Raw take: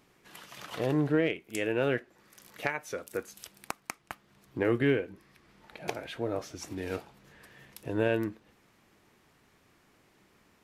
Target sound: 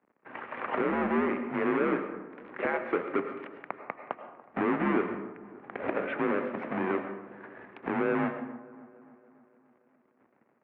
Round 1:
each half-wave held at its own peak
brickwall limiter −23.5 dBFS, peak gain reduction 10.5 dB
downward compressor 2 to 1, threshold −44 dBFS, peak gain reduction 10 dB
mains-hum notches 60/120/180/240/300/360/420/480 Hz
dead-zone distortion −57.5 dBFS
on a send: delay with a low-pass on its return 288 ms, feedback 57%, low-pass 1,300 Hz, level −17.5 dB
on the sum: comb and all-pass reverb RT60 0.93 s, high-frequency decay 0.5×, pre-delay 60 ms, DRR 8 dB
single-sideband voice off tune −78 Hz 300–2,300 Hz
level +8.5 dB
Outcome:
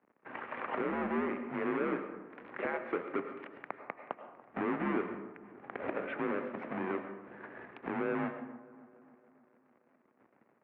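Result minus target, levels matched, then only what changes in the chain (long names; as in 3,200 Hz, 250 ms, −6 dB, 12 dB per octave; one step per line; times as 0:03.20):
downward compressor: peak gain reduction +5.5 dB
change: downward compressor 2 to 1, threshold −33 dBFS, peak gain reduction 4.5 dB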